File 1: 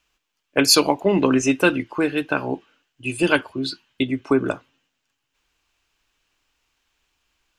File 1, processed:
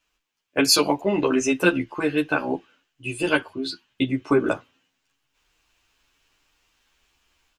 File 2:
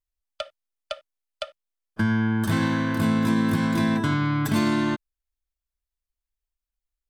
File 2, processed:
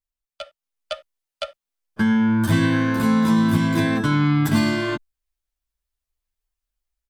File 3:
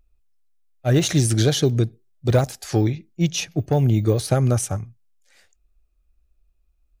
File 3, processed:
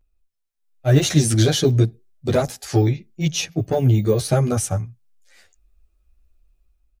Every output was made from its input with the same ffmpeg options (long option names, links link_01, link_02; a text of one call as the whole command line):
ffmpeg -i in.wav -filter_complex "[0:a]dynaudnorm=framelen=440:gausssize=3:maxgain=7dB,asplit=2[link_01][link_02];[link_02]adelay=10.8,afreqshift=0.93[link_03];[link_01][link_03]amix=inputs=2:normalize=1" out.wav